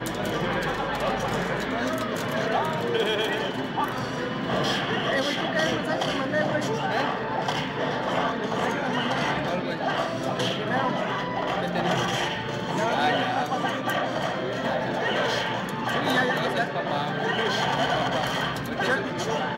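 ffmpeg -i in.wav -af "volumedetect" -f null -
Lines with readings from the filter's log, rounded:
mean_volume: -26.2 dB
max_volume: -13.5 dB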